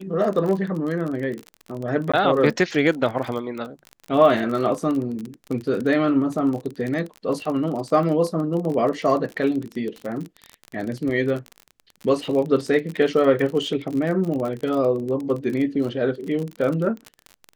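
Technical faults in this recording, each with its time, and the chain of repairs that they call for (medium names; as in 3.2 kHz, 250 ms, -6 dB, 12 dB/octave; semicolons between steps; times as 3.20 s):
crackle 33 per s -27 dBFS
2.12–2.13 s: dropout 15 ms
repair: de-click; interpolate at 2.12 s, 15 ms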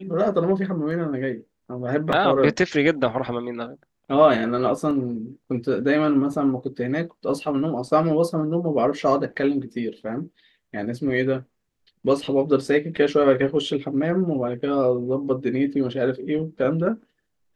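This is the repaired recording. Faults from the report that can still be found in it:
nothing left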